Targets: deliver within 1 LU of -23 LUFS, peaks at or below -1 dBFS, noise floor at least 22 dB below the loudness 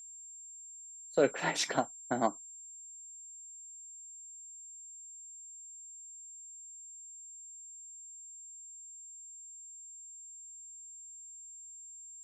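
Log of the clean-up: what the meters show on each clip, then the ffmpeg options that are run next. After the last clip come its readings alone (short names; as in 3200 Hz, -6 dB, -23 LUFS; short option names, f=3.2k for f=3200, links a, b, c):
steady tone 7400 Hz; tone level -47 dBFS; loudness -40.5 LUFS; peak -14.5 dBFS; loudness target -23.0 LUFS
-> -af "bandreject=f=7.4k:w=30"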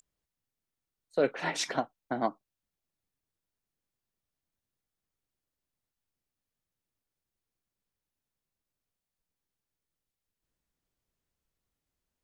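steady tone none; loudness -32.5 LUFS; peak -14.5 dBFS; loudness target -23.0 LUFS
-> -af "volume=9.5dB"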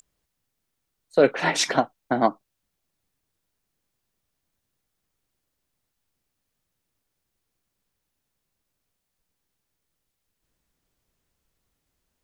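loudness -23.0 LUFS; peak -5.0 dBFS; noise floor -80 dBFS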